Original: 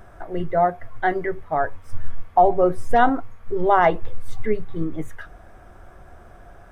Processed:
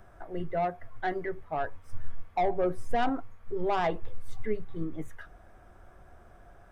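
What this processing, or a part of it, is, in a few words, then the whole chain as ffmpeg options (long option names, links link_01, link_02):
one-band saturation: -filter_complex "[0:a]acrossover=split=390|2900[link_01][link_02][link_03];[link_02]asoftclip=type=tanh:threshold=-15.5dB[link_04];[link_01][link_04][link_03]amix=inputs=3:normalize=0,volume=-8.5dB"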